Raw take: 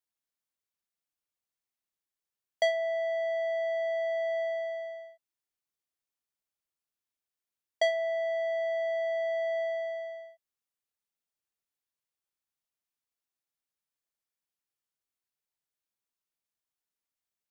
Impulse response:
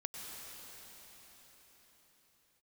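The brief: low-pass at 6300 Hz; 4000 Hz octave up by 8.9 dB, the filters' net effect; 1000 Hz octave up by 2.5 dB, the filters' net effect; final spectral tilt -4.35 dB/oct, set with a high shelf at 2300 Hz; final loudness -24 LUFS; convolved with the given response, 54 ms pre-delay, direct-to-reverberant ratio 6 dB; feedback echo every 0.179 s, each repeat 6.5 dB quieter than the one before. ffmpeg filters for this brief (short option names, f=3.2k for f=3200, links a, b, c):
-filter_complex "[0:a]lowpass=6.3k,equalizer=f=1k:t=o:g=4.5,highshelf=f=2.3k:g=7.5,equalizer=f=4k:t=o:g=5,aecho=1:1:179|358|537|716|895|1074:0.473|0.222|0.105|0.0491|0.0231|0.0109,asplit=2[a][b];[1:a]atrim=start_sample=2205,adelay=54[c];[b][c]afir=irnorm=-1:irlink=0,volume=-5.5dB[d];[a][d]amix=inputs=2:normalize=0,volume=3dB"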